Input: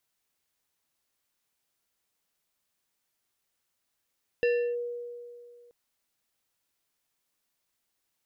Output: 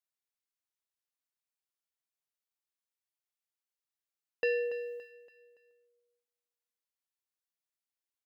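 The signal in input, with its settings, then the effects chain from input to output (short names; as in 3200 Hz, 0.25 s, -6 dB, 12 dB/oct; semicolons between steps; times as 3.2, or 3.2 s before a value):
FM tone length 1.28 s, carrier 480 Hz, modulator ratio 4.67, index 0.52, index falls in 0.33 s linear, decay 2.31 s, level -20.5 dB
gate -40 dBFS, range -16 dB; low shelf 350 Hz -11 dB; feedback echo 0.284 s, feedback 39%, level -13 dB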